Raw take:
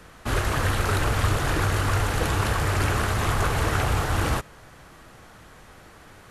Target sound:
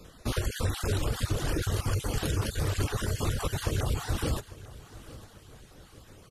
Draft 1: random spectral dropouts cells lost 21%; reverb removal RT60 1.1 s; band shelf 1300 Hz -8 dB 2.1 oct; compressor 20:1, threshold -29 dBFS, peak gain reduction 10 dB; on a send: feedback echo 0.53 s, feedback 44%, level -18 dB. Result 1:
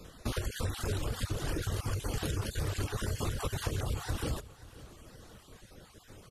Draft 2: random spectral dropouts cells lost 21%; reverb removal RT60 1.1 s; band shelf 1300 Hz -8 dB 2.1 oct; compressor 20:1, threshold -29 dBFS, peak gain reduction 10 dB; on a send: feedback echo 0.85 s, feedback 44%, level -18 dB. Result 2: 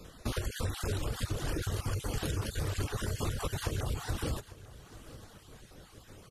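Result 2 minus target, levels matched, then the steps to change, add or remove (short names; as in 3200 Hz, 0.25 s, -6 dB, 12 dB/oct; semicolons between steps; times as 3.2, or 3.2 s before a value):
compressor: peak gain reduction +5.5 dB
change: compressor 20:1, threshold -23 dBFS, peak gain reduction 4.5 dB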